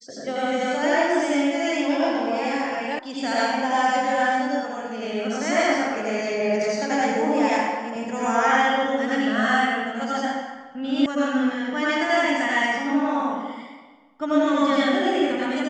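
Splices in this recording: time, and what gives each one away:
0:02.99: cut off before it has died away
0:11.06: cut off before it has died away

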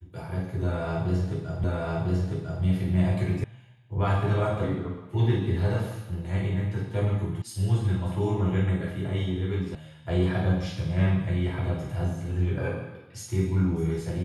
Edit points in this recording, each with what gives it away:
0:01.64: the same again, the last 1 s
0:03.44: cut off before it has died away
0:07.42: cut off before it has died away
0:09.75: cut off before it has died away

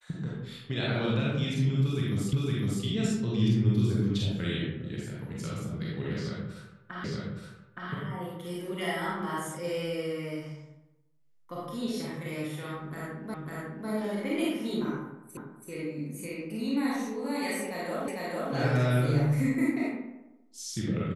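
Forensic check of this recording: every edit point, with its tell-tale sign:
0:02.33: the same again, the last 0.51 s
0:07.04: the same again, the last 0.87 s
0:13.34: the same again, the last 0.55 s
0:15.37: the same again, the last 0.33 s
0:18.08: the same again, the last 0.45 s

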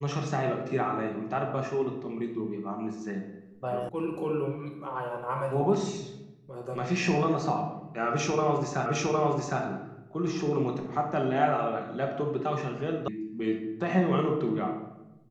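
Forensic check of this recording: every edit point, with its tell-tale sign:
0:03.89: cut off before it has died away
0:08.86: the same again, the last 0.76 s
0:13.08: cut off before it has died away

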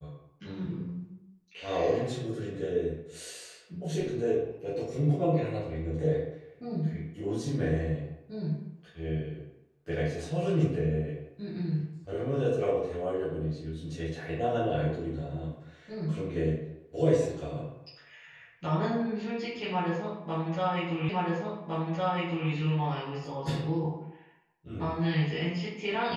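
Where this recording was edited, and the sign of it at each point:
0:21.09: the same again, the last 1.41 s

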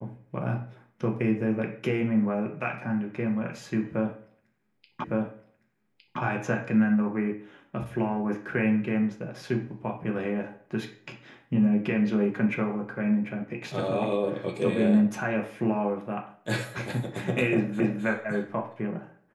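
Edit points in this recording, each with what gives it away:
0:05.04: the same again, the last 1.16 s
0:17.80: the same again, the last 0.26 s

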